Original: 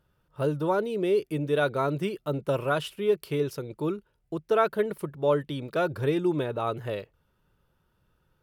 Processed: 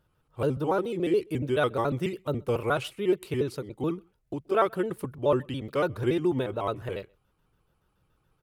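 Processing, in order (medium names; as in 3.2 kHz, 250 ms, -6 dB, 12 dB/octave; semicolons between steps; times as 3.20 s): pitch shift switched off and on -2.5 st, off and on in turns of 71 ms; echo from a far wall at 22 m, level -30 dB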